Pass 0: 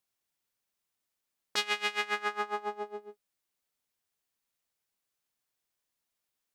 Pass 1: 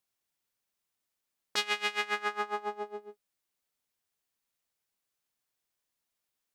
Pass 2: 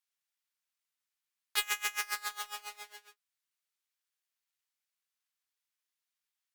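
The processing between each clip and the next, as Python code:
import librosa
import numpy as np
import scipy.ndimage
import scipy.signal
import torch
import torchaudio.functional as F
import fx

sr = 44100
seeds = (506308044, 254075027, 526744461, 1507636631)

y1 = x
y2 = fx.halfwave_hold(y1, sr)
y2 = scipy.signal.sosfilt(scipy.signal.butter(2, 1300.0, 'highpass', fs=sr, output='sos'), y2)
y2 = fx.cheby_harmonics(y2, sr, harmonics=(3, 4, 6, 8), levels_db=(-15, -35, -31, -33), full_scale_db=-9.0)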